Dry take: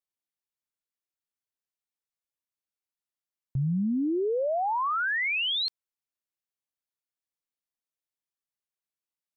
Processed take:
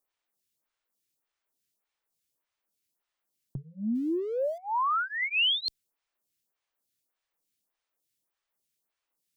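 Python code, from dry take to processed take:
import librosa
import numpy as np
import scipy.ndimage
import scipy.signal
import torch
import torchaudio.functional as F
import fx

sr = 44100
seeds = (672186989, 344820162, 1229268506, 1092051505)

y = fx.zero_step(x, sr, step_db=-47.5, at=(3.95, 4.58))
y = fx.high_shelf(y, sr, hz=2500.0, db=-12.0, at=(5.21, 5.66))
y = fx.over_compress(y, sr, threshold_db=-33.0, ratio=-1.0)
y = fx.stagger_phaser(y, sr, hz=1.7)
y = F.gain(torch.from_numpy(y), 7.5).numpy()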